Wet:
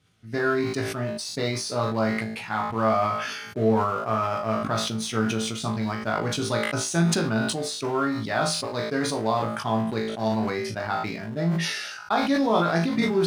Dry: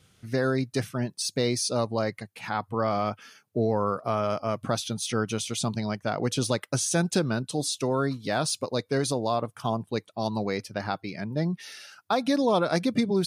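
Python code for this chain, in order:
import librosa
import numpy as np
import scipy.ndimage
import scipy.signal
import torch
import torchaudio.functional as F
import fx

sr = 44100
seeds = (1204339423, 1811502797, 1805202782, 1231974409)

p1 = fx.doubler(x, sr, ms=41.0, db=-8)
p2 = np.where(np.abs(p1) >= 10.0 ** (-28.5 / 20.0), p1, 0.0)
p3 = p1 + (p2 * 10.0 ** (-7.0 / 20.0))
p4 = scipy.signal.sosfilt(scipy.signal.butter(2, 45.0, 'highpass', fs=sr, output='sos'), p3)
p5 = fx.high_shelf(p4, sr, hz=7000.0, db=-10.0)
p6 = fx.notch(p5, sr, hz=510.0, q=12.0)
p7 = p6 + fx.room_flutter(p6, sr, wall_m=3.1, rt60_s=0.25, dry=0)
p8 = fx.dynamic_eq(p7, sr, hz=1400.0, q=0.81, threshold_db=-35.0, ratio=4.0, max_db=5)
p9 = fx.sustainer(p8, sr, db_per_s=38.0)
y = p9 * 10.0 ** (-6.0 / 20.0)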